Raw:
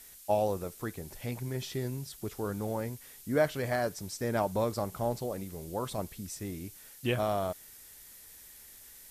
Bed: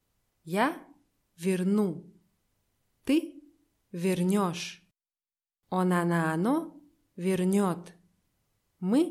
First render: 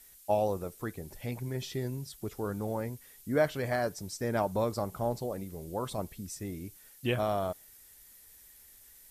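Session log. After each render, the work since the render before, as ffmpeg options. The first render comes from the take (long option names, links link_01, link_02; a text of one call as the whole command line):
ffmpeg -i in.wav -af "afftdn=noise_reduction=6:noise_floor=-53" out.wav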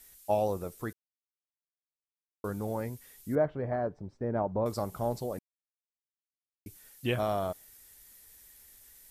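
ffmpeg -i in.wav -filter_complex "[0:a]asettb=1/sr,asplit=3[link_01][link_02][link_03];[link_01]atrim=end=3.354[link_04];[link_02]atrim=start=3.35:end=4.66,asetpts=PTS-STARTPTS,afade=type=in:duration=0.004:curve=qsin,afade=type=out:start_time=1.306:duration=0.004:curve=qsin,lowpass=1000[link_05];[link_03]atrim=start=4.656[link_06];[link_04][link_05]acrossfade=duration=0.004:curve1=hsin:curve2=qsin[link_07];[link_07][link_06]acrossfade=duration=0.004:curve1=qsin:curve2=hsin,asplit=5[link_08][link_09][link_10][link_11][link_12];[link_08]atrim=end=0.93,asetpts=PTS-STARTPTS,afade=type=out:start_time=0.926:duration=0.004:curve=hsin[link_13];[link_09]atrim=start=0.93:end=2.44,asetpts=PTS-STARTPTS,volume=0[link_14];[link_10]atrim=start=2.44:end=5.39,asetpts=PTS-STARTPTS,afade=type=in:duration=0.004:curve=hsin,afade=type=out:start_time=2.946:duration=0.004:curve=hsin[link_15];[link_11]atrim=start=5.39:end=6.66,asetpts=PTS-STARTPTS,volume=0[link_16];[link_12]atrim=start=6.66,asetpts=PTS-STARTPTS,afade=type=in:duration=0.004:curve=hsin[link_17];[link_13][link_14][link_15][link_16][link_17]concat=n=5:v=0:a=1" out.wav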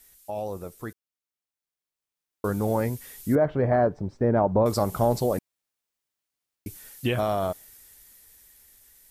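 ffmpeg -i in.wav -af "alimiter=limit=-23.5dB:level=0:latency=1:release=64,dynaudnorm=framelen=340:gausssize=13:maxgain=11dB" out.wav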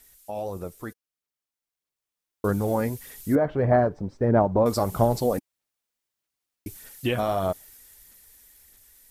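ffmpeg -i in.wav -af "aphaser=in_gain=1:out_gain=1:delay=4.2:decay=0.32:speed=1.6:type=sinusoidal" out.wav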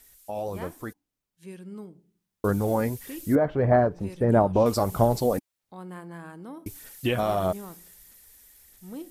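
ffmpeg -i in.wav -i bed.wav -filter_complex "[1:a]volume=-14.5dB[link_01];[0:a][link_01]amix=inputs=2:normalize=0" out.wav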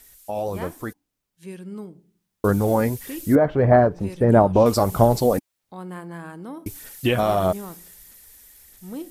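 ffmpeg -i in.wav -af "volume=5dB" out.wav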